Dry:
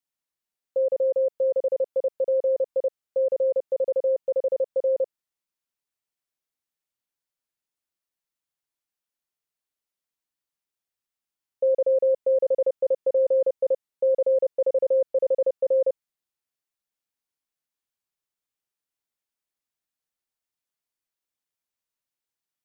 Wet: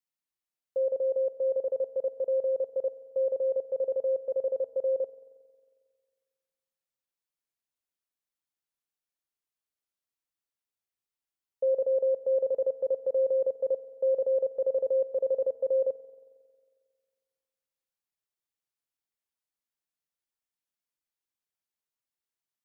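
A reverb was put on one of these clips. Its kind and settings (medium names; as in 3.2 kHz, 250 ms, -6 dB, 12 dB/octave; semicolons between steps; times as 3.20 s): spring tank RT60 1.8 s, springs 45 ms, chirp 30 ms, DRR 14.5 dB; trim -5 dB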